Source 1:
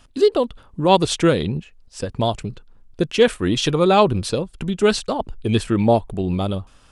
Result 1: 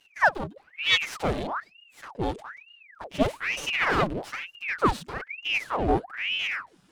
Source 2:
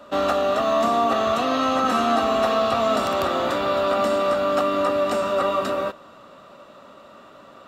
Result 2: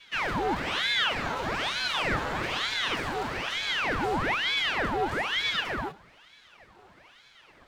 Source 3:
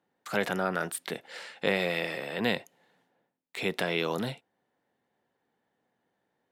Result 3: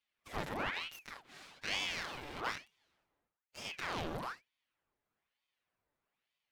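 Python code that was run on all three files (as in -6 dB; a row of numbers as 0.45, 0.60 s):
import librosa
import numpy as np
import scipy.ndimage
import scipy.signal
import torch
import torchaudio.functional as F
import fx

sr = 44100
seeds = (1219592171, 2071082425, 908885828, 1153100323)

y = fx.lower_of_two(x, sr, delay_ms=7.0)
y = fx.hpss(y, sr, part='percussive', gain_db=-14)
y = fx.ring_lfo(y, sr, carrier_hz=1500.0, swing_pct=90, hz=1.1)
y = y * 10.0 ** (-2.5 / 20.0)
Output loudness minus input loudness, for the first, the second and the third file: -7.5, -6.5, -9.0 LU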